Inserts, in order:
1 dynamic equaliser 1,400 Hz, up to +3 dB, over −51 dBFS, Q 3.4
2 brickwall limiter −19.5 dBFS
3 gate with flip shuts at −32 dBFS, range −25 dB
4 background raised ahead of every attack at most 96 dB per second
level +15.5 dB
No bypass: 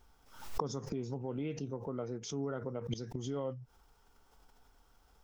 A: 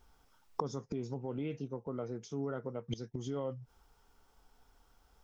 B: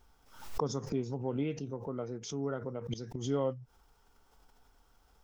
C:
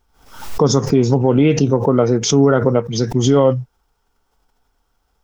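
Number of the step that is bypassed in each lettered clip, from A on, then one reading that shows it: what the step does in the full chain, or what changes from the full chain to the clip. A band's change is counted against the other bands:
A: 4, 8 kHz band −6.0 dB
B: 2, change in crest factor −3.0 dB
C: 3, change in momentary loudness spread +2 LU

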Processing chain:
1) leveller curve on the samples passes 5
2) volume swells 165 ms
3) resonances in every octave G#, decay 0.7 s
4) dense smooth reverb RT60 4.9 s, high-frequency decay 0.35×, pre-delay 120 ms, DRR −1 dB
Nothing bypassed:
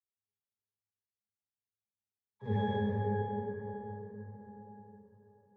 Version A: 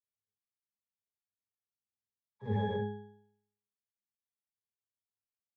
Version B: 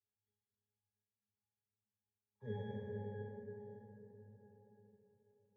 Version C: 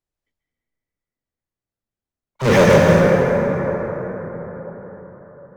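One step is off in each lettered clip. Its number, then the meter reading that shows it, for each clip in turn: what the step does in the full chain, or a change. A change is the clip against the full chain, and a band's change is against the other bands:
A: 4, change in crest factor +4.0 dB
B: 1, change in crest factor +1.5 dB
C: 3, 2 kHz band +8.5 dB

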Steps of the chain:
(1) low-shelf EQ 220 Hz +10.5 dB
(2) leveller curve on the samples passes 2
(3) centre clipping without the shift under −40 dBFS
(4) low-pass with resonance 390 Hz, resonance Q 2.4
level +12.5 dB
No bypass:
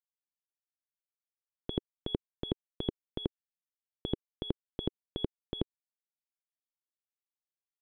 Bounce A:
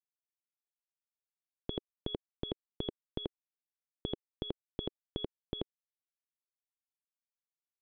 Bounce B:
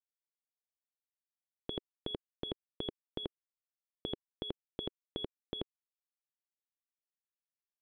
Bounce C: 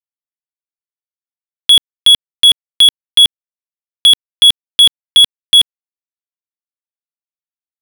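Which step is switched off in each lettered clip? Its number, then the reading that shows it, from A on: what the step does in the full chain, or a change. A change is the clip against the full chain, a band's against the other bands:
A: 2, 125 Hz band −3.0 dB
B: 1, 125 Hz band −8.5 dB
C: 4, change in crest factor −16.0 dB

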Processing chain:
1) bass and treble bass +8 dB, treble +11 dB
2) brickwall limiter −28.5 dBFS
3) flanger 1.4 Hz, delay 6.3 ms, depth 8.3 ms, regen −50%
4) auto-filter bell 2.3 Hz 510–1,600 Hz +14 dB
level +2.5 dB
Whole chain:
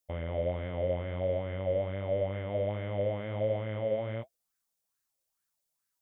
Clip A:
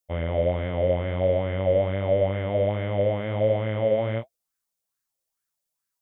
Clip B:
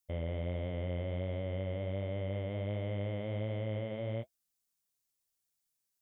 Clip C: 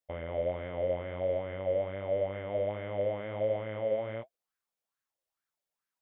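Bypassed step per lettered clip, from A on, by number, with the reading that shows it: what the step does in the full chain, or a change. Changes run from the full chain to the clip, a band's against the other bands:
2, average gain reduction 8.0 dB
4, 500 Hz band −6.0 dB
1, 125 Hz band −7.0 dB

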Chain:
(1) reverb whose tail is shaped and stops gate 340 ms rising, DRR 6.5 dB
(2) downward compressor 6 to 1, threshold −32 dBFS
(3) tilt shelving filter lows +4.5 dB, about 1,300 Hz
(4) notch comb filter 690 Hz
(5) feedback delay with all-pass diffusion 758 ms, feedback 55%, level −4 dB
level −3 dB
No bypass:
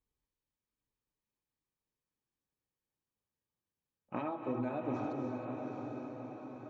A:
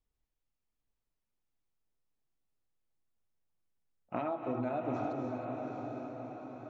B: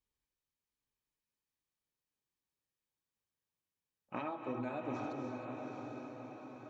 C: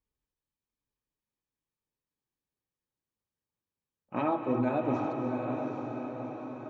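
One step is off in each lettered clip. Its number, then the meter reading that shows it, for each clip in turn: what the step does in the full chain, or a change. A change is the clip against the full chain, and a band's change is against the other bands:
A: 4, 1 kHz band +2.0 dB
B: 3, change in crest factor +1.5 dB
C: 2, change in momentary loudness spread +2 LU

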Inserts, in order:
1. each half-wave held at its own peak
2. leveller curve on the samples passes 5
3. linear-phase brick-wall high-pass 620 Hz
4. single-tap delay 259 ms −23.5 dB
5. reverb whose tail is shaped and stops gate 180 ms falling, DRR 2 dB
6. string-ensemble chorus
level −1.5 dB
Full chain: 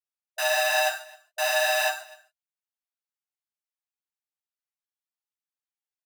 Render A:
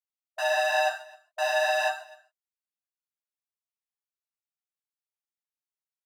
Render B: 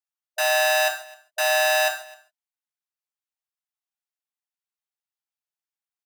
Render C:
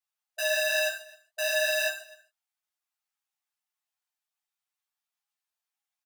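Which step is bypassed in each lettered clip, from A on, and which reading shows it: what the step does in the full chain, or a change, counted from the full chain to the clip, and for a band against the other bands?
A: 1, distortion level −6 dB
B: 6, change in crest factor −2.5 dB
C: 2, 1 kHz band −18.0 dB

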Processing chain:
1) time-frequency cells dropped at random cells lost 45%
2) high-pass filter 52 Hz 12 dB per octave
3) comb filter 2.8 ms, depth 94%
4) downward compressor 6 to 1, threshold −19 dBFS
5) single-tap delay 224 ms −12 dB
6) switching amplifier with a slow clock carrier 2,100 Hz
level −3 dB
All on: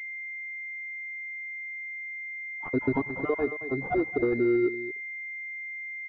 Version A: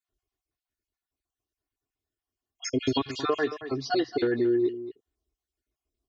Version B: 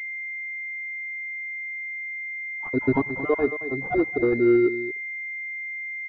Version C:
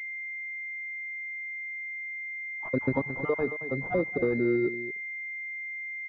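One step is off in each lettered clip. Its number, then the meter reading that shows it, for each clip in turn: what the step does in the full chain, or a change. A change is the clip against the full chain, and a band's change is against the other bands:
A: 6, 2 kHz band −9.5 dB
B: 4, average gain reduction 3.0 dB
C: 3, 125 Hz band +4.0 dB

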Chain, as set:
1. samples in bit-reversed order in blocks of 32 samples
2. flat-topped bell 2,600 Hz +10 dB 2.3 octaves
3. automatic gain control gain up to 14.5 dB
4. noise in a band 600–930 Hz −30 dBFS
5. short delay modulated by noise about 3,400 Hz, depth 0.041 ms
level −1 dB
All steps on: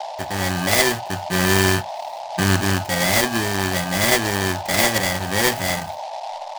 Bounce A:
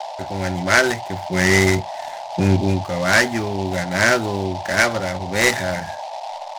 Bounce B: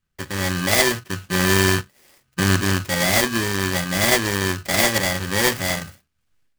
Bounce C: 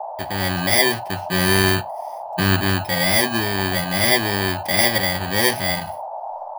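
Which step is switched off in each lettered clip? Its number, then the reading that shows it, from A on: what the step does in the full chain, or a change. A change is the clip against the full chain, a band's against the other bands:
1, 8 kHz band −5.0 dB
4, 1 kHz band −3.5 dB
5, 8 kHz band −2.5 dB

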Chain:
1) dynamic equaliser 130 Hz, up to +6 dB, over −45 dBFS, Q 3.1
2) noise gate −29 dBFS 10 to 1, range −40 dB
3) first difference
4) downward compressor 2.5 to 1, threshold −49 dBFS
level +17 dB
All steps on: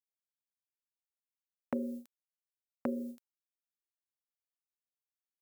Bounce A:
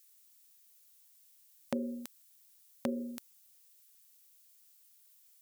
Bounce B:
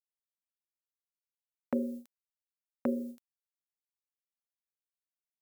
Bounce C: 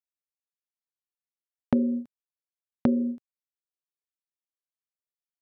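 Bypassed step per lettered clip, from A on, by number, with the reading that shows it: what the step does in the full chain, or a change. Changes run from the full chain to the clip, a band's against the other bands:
2, change in momentary loudness spread +1 LU
4, average gain reduction 1.5 dB
3, 125 Hz band +10.5 dB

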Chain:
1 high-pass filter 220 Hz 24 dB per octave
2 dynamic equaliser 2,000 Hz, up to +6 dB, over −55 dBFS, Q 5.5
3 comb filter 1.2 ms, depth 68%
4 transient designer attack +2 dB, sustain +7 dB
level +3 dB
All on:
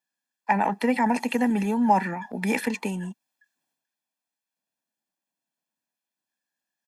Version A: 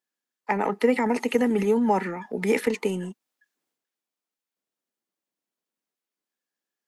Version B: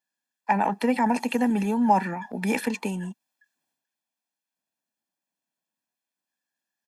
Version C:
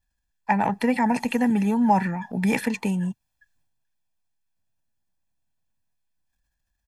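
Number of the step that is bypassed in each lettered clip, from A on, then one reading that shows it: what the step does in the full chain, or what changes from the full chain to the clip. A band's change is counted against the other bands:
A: 3, 500 Hz band +7.5 dB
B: 2, 2 kHz band −2.0 dB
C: 1, 125 Hz band +5.0 dB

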